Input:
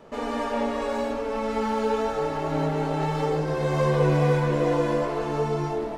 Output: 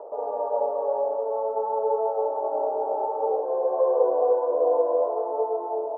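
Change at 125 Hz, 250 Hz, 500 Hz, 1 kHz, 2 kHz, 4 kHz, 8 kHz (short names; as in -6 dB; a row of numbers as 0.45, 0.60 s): under -40 dB, -16.5 dB, +3.0 dB, +1.0 dB, under -25 dB, under -40 dB, under -35 dB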